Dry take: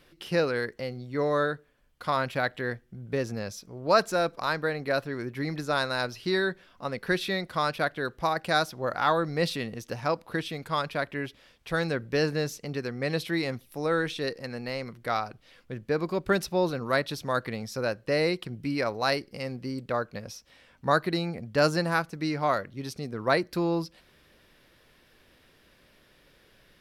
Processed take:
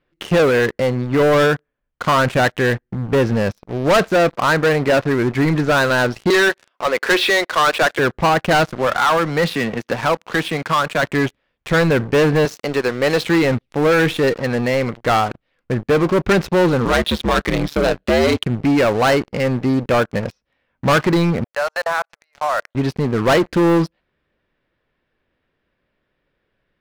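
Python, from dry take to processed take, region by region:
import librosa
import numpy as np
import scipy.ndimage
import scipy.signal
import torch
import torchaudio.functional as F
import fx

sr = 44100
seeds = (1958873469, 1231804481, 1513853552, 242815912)

y = fx.chain(x, sr, fx.highpass(hz=340.0, slope=24),
    fx.high_shelf(hz=2300.0, db=9.5), at=(6.3, 7.99))
y = fx.chain(y, sr, fx.highpass(hz=190.0, slope=12),
    fx.peak_eq(hz=410.0, db=-6.0, octaves=2.4),
    fx.band_squash(depth_pct=40), at=(8.75, 11.03))
y = fx.chain(y, sr, fx.sample_gate(floor_db=-50.5),
    fx.highpass(hz=52.0, slope=12),
    fx.bass_treble(bass_db=-13, treble_db=10), at=(12.45, 13.24))
y = fx.chain(y, sr, fx.peak_eq(hz=3500.0, db=13.0, octaves=0.65),
    fx.ring_mod(carrier_hz=74.0),
    fx.band_squash(depth_pct=40), at=(16.85, 18.43))
y = fx.chain(y, sr, fx.steep_highpass(hz=580.0, slope=48),
    fx.level_steps(step_db=18), at=(21.44, 22.75))
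y = scipy.signal.sosfilt(scipy.signal.butter(2, 2400.0, 'lowpass', fs=sr, output='sos'), y)
y = fx.leveller(y, sr, passes=5)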